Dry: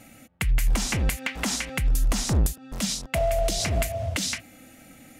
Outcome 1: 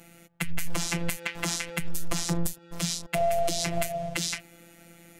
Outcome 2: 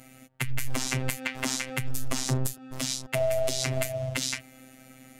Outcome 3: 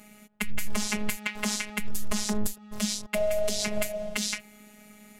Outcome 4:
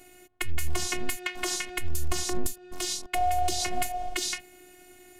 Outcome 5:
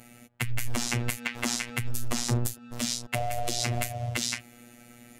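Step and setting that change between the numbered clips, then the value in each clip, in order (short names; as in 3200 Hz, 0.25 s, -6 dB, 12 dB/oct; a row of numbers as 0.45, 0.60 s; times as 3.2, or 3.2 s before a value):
robotiser, frequency: 170, 130, 210, 360, 120 Hz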